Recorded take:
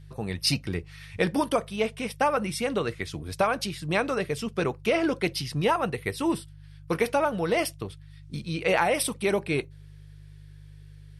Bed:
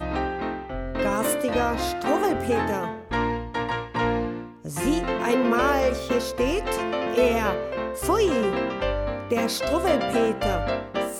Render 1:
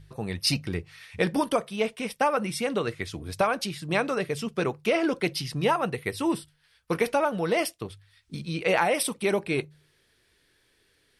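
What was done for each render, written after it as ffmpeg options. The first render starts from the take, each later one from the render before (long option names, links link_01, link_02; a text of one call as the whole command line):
ffmpeg -i in.wav -af "bandreject=frequency=50:width_type=h:width=4,bandreject=frequency=100:width_type=h:width=4,bandreject=frequency=150:width_type=h:width=4" out.wav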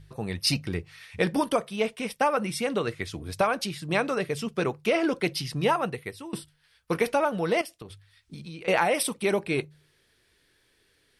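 ffmpeg -i in.wav -filter_complex "[0:a]asettb=1/sr,asplit=3[link_01][link_02][link_03];[link_01]atrim=end=7.614[link_04];[link_02]atrim=start=7.61:end=8.68,asetpts=PTS-STARTPTS,afade=type=in:duration=0.004:curve=qsin,afade=type=out:start_time=1.066:duration=0.004:curve=qsin,acompressor=threshold=-37dB:ratio=6:attack=3.2:release=140:knee=1:detection=peak[link_05];[link_03]atrim=start=8.676[link_06];[link_04][link_05]acrossfade=duration=0.004:curve1=hsin:curve2=qsin[link_07];[link_07][link_06]acrossfade=duration=0.004:curve1=qsin:curve2=hsin,asplit=2[link_08][link_09];[link_08]atrim=end=6.33,asetpts=PTS-STARTPTS,afade=type=out:start_time=5.78:duration=0.55:silence=0.0794328[link_10];[link_09]atrim=start=6.33,asetpts=PTS-STARTPTS,afade=type=in:duration=0.004:curve=hsin:silence=0.0794328[link_11];[link_10][link_11]concat=n=2:v=0:a=1" out.wav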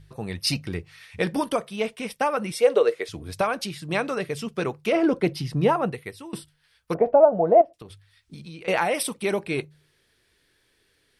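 ffmpeg -i in.wav -filter_complex "[0:a]asettb=1/sr,asplit=3[link_01][link_02][link_03];[link_01]atrim=end=2.524[link_04];[link_02]atrim=start=2.52:end=3.09,asetpts=PTS-STARTPTS,afade=type=in:duration=0.004:curve=qsin,afade=type=out:start_time=0.566:duration=0.004:curve=qsin,highpass=frequency=470:width_type=q:width=4.4[link_05];[link_03]atrim=start=3.086[link_06];[link_04][link_05]acrossfade=duration=0.004:curve1=hsin:curve2=qsin[link_07];[link_07][link_06]acrossfade=duration=0.004:curve1=qsin:curve2=hsin,asettb=1/sr,asplit=3[link_08][link_09][link_10];[link_08]atrim=end=4.924[link_11];[link_09]atrim=start=4.92:end=5.92,asetpts=PTS-STARTPTS,afade=type=in:duration=0.004:curve=qsin,afade=type=out:start_time=0.996:duration=0.004:curve=qsin,tiltshelf=frequency=1300:gain=6[link_12];[link_10]atrim=start=5.916[link_13];[link_11][link_12]acrossfade=duration=0.004:curve1=hsin:curve2=qsin[link_14];[link_14][link_13]acrossfade=duration=0.004:curve1=qsin:curve2=hsin,asplit=3[link_15][link_16][link_17];[link_15]afade=type=out:start_time=6.93:duration=0.02[link_18];[link_16]lowpass=frequency=680:width_type=q:width=5.7,afade=type=in:start_time=6.93:duration=0.02,afade=type=out:start_time=7.73:duration=0.02[link_19];[link_17]afade=type=in:start_time=7.73:duration=0.02[link_20];[link_18][link_19][link_20]amix=inputs=3:normalize=0" out.wav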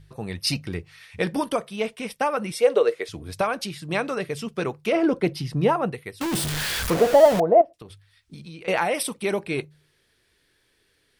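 ffmpeg -i in.wav -filter_complex "[0:a]asettb=1/sr,asplit=3[link_01][link_02][link_03];[link_01]atrim=end=6.214[link_04];[link_02]atrim=start=6.21:end=7.4,asetpts=PTS-STARTPTS,afade=type=in:duration=0.004:curve=qsin,afade=type=out:start_time=1.186:duration=0.004:curve=qsin,aeval=exprs='val(0)+0.5*0.0891*sgn(val(0))':channel_layout=same[link_05];[link_03]atrim=start=7.396[link_06];[link_04][link_05]acrossfade=duration=0.004:curve1=hsin:curve2=qsin[link_07];[link_07][link_06]acrossfade=duration=0.004:curve1=qsin:curve2=hsin" out.wav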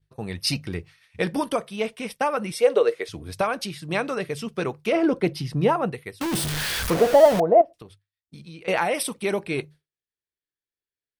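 ffmpeg -i in.wav -af "agate=range=-33dB:threshold=-38dB:ratio=3:detection=peak,bandreject=frequency=7200:width=22" out.wav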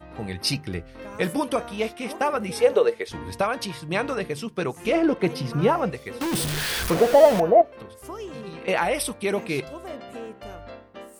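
ffmpeg -i in.wav -i bed.wav -filter_complex "[1:a]volume=-15dB[link_01];[0:a][link_01]amix=inputs=2:normalize=0" out.wav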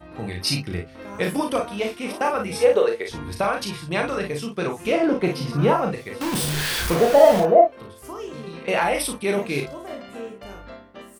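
ffmpeg -i in.wav -af "aecho=1:1:35|55:0.596|0.422" out.wav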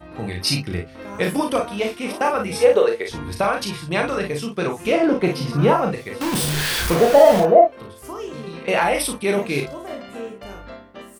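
ffmpeg -i in.wav -af "volume=2.5dB,alimiter=limit=-1dB:level=0:latency=1" out.wav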